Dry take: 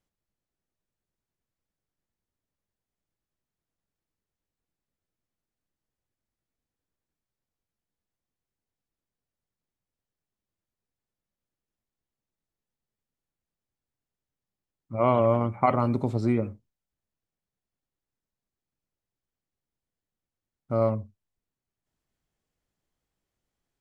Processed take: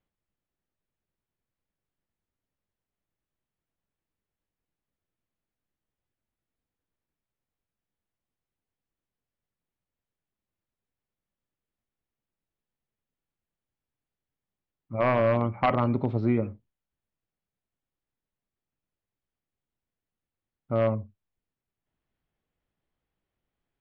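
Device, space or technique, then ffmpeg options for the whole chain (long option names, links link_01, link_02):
synthesiser wavefolder: -af "aeval=exprs='0.211*(abs(mod(val(0)/0.211+3,4)-2)-1)':channel_layout=same,lowpass=frequency=3500:width=0.5412,lowpass=frequency=3500:width=1.3066"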